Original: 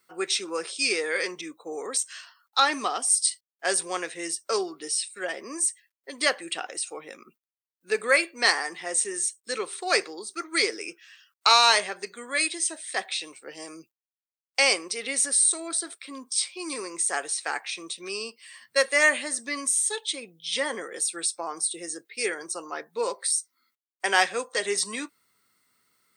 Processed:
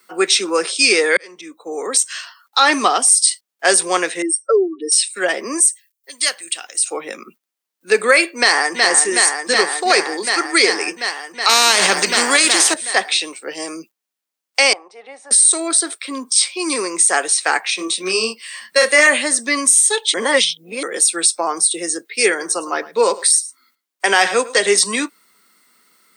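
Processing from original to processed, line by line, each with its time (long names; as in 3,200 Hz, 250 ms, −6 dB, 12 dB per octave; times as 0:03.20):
0:01.17–0:02.13: fade in
0:04.22–0:04.92: expanding power law on the bin magnitudes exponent 3
0:05.60–0:06.86: first-order pre-emphasis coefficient 0.9
0:08.37–0:08.82: delay throw 370 ms, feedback 85%, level −5.5 dB
0:11.49–0:12.74: every bin compressed towards the loudest bin 2 to 1
0:14.73–0:15.31: resonant band-pass 800 Hz, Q 5.7
0:17.76–0:19.07: double-tracking delay 27 ms −3 dB
0:20.14–0:20.83: reverse
0:22.29–0:24.79: single-tap delay 107 ms −18.5 dB
whole clip: Butterworth high-pass 170 Hz 48 dB per octave; boost into a limiter +14 dB; level −1 dB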